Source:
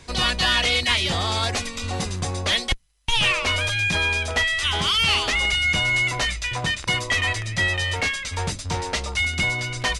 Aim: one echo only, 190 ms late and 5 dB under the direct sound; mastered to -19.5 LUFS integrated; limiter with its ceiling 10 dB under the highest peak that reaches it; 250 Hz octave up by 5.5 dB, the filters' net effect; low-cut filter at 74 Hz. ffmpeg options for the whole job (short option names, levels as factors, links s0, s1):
-af "highpass=74,equalizer=f=250:t=o:g=7.5,alimiter=limit=0.119:level=0:latency=1,aecho=1:1:190:0.562,volume=1.88"